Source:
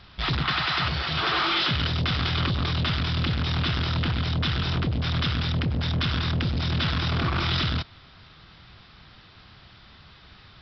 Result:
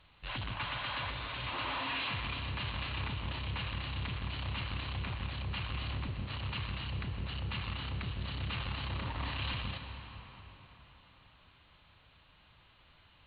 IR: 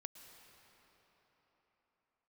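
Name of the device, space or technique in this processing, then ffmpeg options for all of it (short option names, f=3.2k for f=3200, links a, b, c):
slowed and reverbed: -filter_complex "[0:a]asetrate=35280,aresample=44100[a];[1:a]atrim=start_sample=2205[b];[a][b]afir=irnorm=-1:irlink=0,highshelf=f=4.1k:g=5,volume=-8dB"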